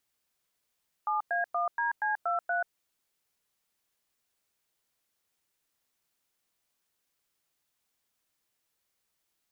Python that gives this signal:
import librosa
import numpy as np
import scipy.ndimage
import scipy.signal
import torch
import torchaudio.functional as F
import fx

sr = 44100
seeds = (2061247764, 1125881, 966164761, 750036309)

y = fx.dtmf(sr, digits='7A1DC23', tone_ms=135, gap_ms=102, level_db=-29.0)